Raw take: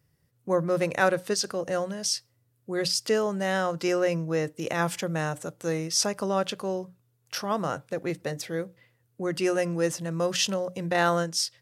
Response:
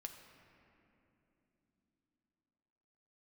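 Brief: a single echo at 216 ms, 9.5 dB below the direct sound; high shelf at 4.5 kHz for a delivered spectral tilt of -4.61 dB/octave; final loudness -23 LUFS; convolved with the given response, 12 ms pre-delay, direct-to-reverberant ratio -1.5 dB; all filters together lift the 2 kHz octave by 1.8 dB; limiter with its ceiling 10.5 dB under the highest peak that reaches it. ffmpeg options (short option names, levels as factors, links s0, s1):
-filter_complex "[0:a]equalizer=f=2000:t=o:g=3,highshelf=f=4500:g=-3.5,alimiter=limit=0.133:level=0:latency=1,aecho=1:1:216:0.335,asplit=2[s0][s1];[1:a]atrim=start_sample=2205,adelay=12[s2];[s1][s2]afir=irnorm=-1:irlink=0,volume=2[s3];[s0][s3]amix=inputs=2:normalize=0,volume=1.26"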